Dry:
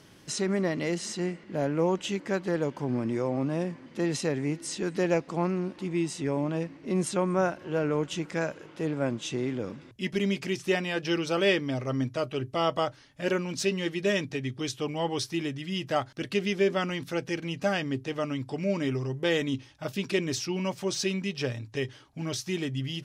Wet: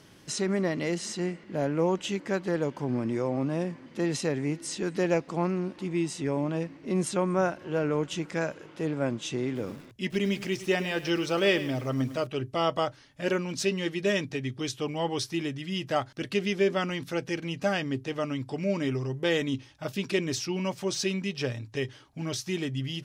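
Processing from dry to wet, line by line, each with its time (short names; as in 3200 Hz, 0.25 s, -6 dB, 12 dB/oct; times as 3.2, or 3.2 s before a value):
9.45–12.27 lo-fi delay 0.105 s, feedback 35%, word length 7-bit, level -13 dB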